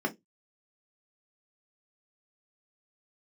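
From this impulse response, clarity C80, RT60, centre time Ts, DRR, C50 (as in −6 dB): 31.0 dB, 0.15 s, 7 ms, −0.5 dB, 20.5 dB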